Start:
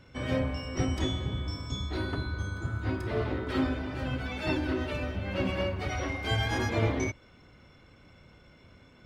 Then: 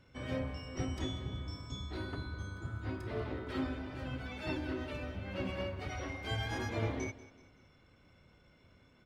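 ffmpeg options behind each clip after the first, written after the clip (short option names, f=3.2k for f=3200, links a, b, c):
-af "aecho=1:1:189|378|567:0.126|0.0529|0.0222,volume=-8dB"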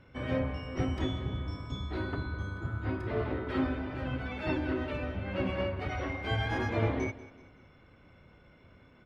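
-af "bass=f=250:g=-1,treble=f=4k:g=-14,volume=6.5dB"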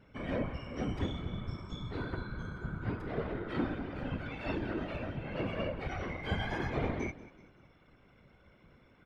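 -af "afftfilt=real='hypot(re,im)*cos(2*PI*random(0))':imag='hypot(re,im)*sin(2*PI*random(1))':win_size=512:overlap=0.75,volume=2.5dB"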